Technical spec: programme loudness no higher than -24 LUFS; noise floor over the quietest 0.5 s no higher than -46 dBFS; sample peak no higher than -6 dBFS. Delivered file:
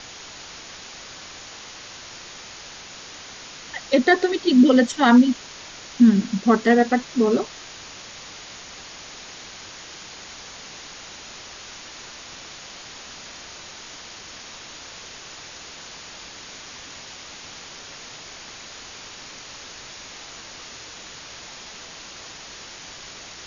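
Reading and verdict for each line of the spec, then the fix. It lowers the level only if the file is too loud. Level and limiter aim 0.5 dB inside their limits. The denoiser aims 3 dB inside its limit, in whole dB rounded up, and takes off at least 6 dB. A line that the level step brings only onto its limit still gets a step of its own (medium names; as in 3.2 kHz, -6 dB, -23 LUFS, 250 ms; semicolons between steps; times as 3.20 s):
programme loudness -18.5 LUFS: fail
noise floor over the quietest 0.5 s -40 dBFS: fail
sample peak -5.5 dBFS: fail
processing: noise reduction 6 dB, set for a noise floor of -40 dBFS; trim -6 dB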